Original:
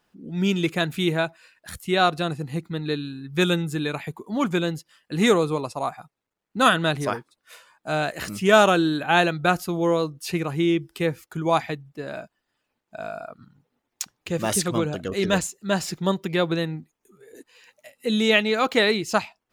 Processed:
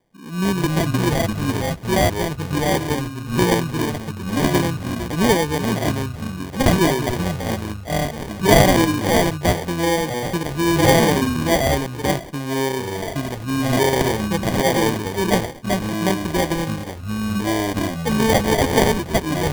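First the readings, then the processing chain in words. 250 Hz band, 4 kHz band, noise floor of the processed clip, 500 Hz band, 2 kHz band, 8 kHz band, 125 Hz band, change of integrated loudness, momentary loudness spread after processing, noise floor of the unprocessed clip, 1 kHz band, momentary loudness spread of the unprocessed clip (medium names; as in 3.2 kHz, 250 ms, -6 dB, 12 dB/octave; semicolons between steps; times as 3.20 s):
+5.5 dB, +2.5 dB, -33 dBFS, +4.0 dB, +1.5 dB, +6.5 dB, +8.0 dB, +3.5 dB, 9 LU, -80 dBFS, +3.5 dB, 16 LU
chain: ever faster or slower copies 138 ms, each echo -4 st, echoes 3; sample-and-hold 33×; trim +2 dB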